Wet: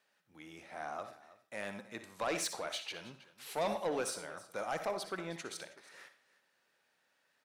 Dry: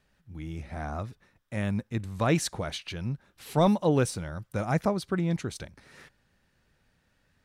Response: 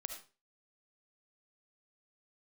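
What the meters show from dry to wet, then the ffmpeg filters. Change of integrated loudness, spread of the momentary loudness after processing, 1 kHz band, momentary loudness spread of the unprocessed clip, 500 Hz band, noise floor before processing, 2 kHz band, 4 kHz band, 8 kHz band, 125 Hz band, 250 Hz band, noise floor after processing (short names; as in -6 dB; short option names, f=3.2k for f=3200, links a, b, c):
-10.0 dB, 18 LU, -6.5 dB, 15 LU, -8.5 dB, -71 dBFS, -4.5 dB, -4.0 dB, -3.5 dB, -25.0 dB, -17.5 dB, -77 dBFS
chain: -filter_complex "[0:a]highpass=500,asplit=2[a][b];[1:a]atrim=start_sample=2205[c];[b][c]afir=irnorm=-1:irlink=0,volume=0dB[d];[a][d]amix=inputs=2:normalize=0,asoftclip=type=tanh:threshold=-20.5dB,asplit=2[e][f];[f]aecho=0:1:60|320:0.237|0.119[g];[e][g]amix=inputs=2:normalize=0,volume=-7.5dB"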